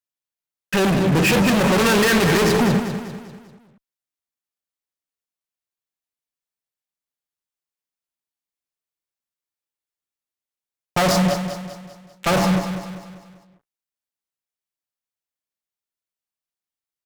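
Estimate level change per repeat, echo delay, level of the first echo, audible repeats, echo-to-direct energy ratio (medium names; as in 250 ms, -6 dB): -6.5 dB, 197 ms, -9.0 dB, 4, -8.0 dB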